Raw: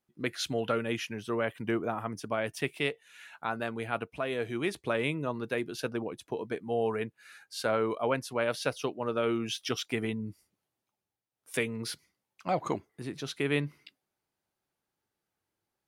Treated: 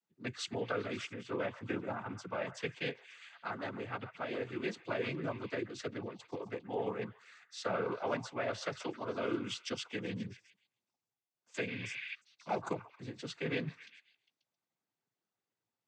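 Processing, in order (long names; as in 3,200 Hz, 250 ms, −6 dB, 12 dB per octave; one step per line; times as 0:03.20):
echo through a band-pass that steps 134 ms, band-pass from 1,100 Hz, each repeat 0.7 octaves, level −10.5 dB
healed spectral selection 0:11.70–0:12.11, 1,400–5,400 Hz before
cochlear-implant simulation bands 16
level −6 dB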